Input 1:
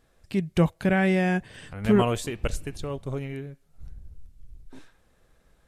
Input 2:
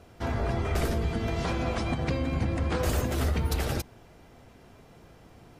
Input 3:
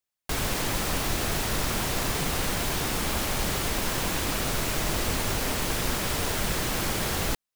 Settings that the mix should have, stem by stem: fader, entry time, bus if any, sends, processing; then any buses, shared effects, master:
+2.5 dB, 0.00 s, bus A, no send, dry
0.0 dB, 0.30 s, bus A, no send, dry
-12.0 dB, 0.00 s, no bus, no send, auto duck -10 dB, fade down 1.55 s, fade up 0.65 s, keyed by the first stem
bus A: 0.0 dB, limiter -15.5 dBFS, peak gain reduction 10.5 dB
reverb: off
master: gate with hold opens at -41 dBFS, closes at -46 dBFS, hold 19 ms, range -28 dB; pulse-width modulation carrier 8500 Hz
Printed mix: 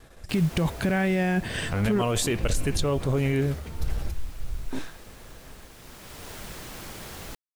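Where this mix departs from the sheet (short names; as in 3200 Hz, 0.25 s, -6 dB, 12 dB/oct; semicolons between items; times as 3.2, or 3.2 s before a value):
stem 1 +2.5 dB -> +14.0 dB; stem 2 0.0 dB -> -11.0 dB; master: missing pulse-width modulation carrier 8500 Hz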